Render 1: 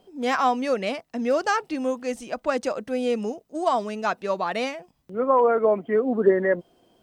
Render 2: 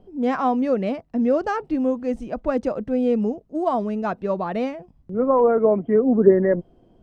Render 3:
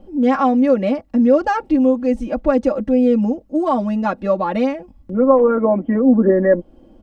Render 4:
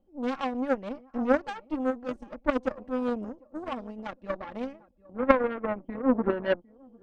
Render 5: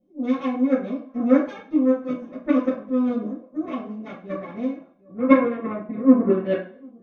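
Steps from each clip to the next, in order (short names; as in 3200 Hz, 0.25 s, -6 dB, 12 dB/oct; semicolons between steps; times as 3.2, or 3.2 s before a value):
tilt -4.5 dB/oct; gain -2 dB
comb 3.6 ms, depth 99%; in parallel at -1.5 dB: compressor, threshold -25 dBFS, peak gain reduction 15.5 dB
tape echo 0.752 s, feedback 31%, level -15 dB, low-pass 1500 Hz; added harmonics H 3 -10 dB, 5 -45 dB, 8 -36 dB, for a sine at -0.5 dBFS; gain -2 dB
reverb RT60 0.45 s, pre-delay 3 ms, DRR -10.5 dB; gain -16.5 dB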